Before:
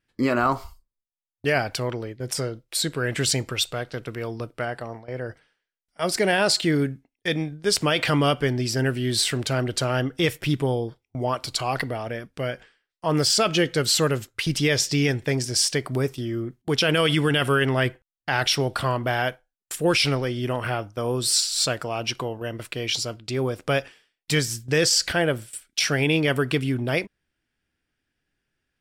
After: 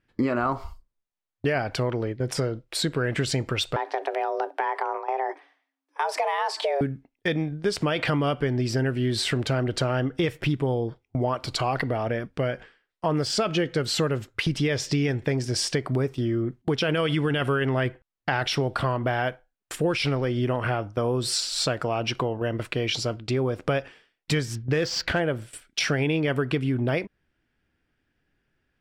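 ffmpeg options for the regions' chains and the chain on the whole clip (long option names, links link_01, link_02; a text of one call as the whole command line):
ffmpeg -i in.wav -filter_complex "[0:a]asettb=1/sr,asplit=3[link_01][link_02][link_03];[link_01]atrim=end=3.764[link_04];[link_02]atrim=start=3.76:end=6.81,asetpts=PTS-STARTPTS,afade=type=in:duration=0.004:curve=qsin,afade=type=out:start_time=3.046:duration=0.004:curve=qsin,equalizer=frequency=710:width=0.59:gain=7,acompressor=threshold=-26dB:ratio=3:attack=3.2:release=140:knee=1:detection=peak,afreqshift=270[link_05];[link_03]atrim=start=6.806[link_06];[link_04][link_05]acrossfade=duration=0.004:curve1=hsin:curve2=qsin[link_07];[link_07][link_06]acrossfade=duration=0.004:curve1=qsin:curve2=hsin,asettb=1/sr,asplit=3[link_08][link_09][link_10];[link_08]atrim=end=24.554[link_11];[link_09]atrim=start=24.55:end=25.2,asetpts=PTS-STARTPTS,afade=type=in:duration=0.004:curve=qsin,afade=type=out:start_time=0.646:duration=0.004:curve=qsin,lowpass=frequency=6500:width=0.5412,lowpass=frequency=6500:width=1.3066,adynamicsmooth=sensitivity=7:basefreq=2100[link_12];[link_10]atrim=start=25.196[link_13];[link_11][link_12]acrossfade=duration=0.004:curve1=hsin:curve2=qsin[link_14];[link_14][link_13]acrossfade=duration=0.004:curve1=qsin:curve2=hsin,lowpass=frequency=1900:poles=1,acompressor=threshold=-29dB:ratio=4,volume=6.5dB" out.wav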